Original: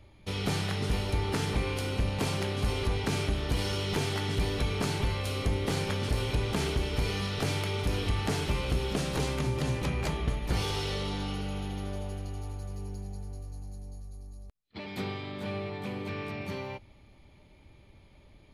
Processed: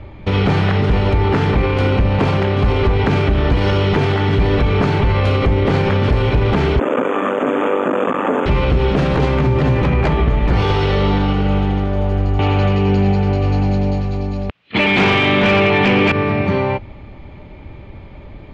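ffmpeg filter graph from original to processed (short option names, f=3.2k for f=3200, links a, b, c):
-filter_complex "[0:a]asettb=1/sr,asplit=3[a][b][c];[a]atrim=end=6.794[d];[b]atrim=start=6.79:end=8.46,asetpts=PTS-STARTPTS,afade=t=in:d=0.004:c=qsin,afade=t=out:st=1.666:d=0.004:c=qsin,acrusher=bits=3:dc=4:mix=0:aa=0.000001,asuperstop=centerf=4700:order=20:qfactor=1.7,highpass=f=240:w=0.5412,highpass=f=240:w=1.3066,equalizer=f=260:t=q:w=4:g=8,equalizer=f=520:t=q:w=4:g=8,equalizer=f=1.2k:t=q:w=4:g=7,equalizer=f=2.1k:t=q:w=4:g=-6,equalizer=f=3.1k:t=q:w=4:g=-9,equalizer=f=6.5k:t=q:w=4:g=-5,lowpass=f=7.5k:w=0.5412,lowpass=f=7.5k:w=1.3066[e];[c]atrim=start=8.456[f];[d][e]acrossfade=d=0.004:c1=hsin:c2=qsin[g];[g][f]acrossfade=d=0.004:c1=qsin:c2=hsin,asettb=1/sr,asplit=3[h][i][j];[h]atrim=end=12.394[k];[i]atrim=start=12.39:end=16.12,asetpts=PTS-STARTPTS,afade=t=in:d=0.004:c=qsin,afade=t=out:st=3.726:d=0.004:c=qsin,highpass=120,lowpass=6.2k,equalizer=f=2.8k:w=1.3:g=13.5,aeval=exprs='0.106*sin(PI/2*2.82*val(0)/0.106)':c=same[l];[j]atrim=start=16.116[m];[k][l]acrossfade=d=0.004:c1=hsin:c2=qsin[n];[n][m]acrossfade=d=0.004:c1=qsin:c2=hsin,lowpass=2.1k,alimiter=level_in=27.5dB:limit=-1dB:release=50:level=0:latency=1,volume=-6.5dB"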